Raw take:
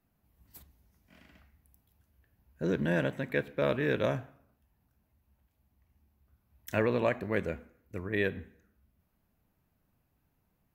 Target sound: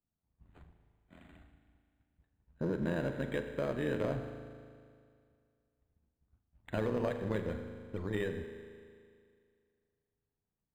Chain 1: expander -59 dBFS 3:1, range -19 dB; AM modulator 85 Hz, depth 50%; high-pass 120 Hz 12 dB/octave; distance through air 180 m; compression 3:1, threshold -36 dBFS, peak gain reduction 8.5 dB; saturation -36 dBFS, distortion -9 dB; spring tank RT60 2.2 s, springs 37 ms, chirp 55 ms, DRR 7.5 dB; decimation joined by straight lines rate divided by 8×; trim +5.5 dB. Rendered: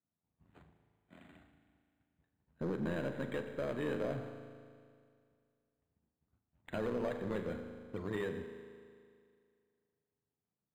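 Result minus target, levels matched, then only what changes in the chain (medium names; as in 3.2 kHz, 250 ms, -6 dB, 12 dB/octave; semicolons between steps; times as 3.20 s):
saturation: distortion +8 dB; 125 Hz band -2.5 dB
change: saturation -29 dBFS, distortion -18 dB; remove: high-pass 120 Hz 12 dB/octave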